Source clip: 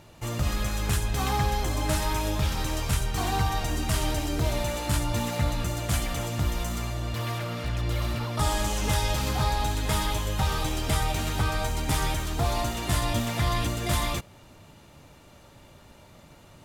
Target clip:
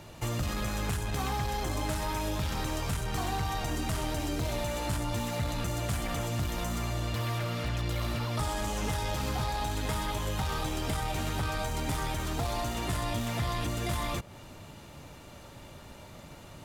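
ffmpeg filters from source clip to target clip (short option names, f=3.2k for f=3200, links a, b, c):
-filter_complex "[0:a]aeval=exprs='0.211*(cos(1*acos(clip(val(0)/0.211,-1,1)))-cos(1*PI/2))+0.0211*(cos(5*acos(clip(val(0)/0.211,-1,1)))-cos(5*PI/2))':c=same,acrossover=split=92|2000[a][b][c];[a]acompressor=threshold=-37dB:ratio=4[d];[b]acompressor=threshold=-32dB:ratio=4[e];[c]acompressor=threshold=-41dB:ratio=4[f];[d][e][f]amix=inputs=3:normalize=0"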